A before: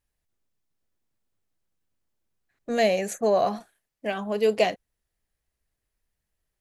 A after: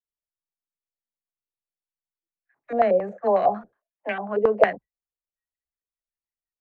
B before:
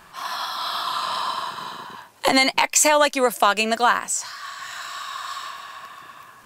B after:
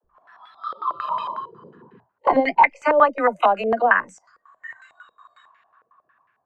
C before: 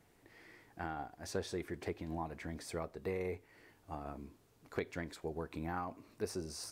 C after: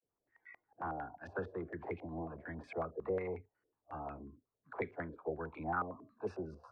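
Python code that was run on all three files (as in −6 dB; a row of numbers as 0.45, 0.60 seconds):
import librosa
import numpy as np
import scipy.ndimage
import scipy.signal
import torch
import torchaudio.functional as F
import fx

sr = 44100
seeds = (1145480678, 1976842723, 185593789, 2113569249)

y = fx.noise_reduce_blind(x, sr, reduce_db=23)
y = fx.dispersion(y, sr, late='lows', ms=46.0, hz=360.0)
y = fx.filter_held_lowpass(y, sr, hz=11.0, low_hz=490.0, high_hz=2100.0)
y = y * librosa.db_to_amplitude(-2.5)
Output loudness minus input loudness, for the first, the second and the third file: +2.5, +1.5, +0.5 LU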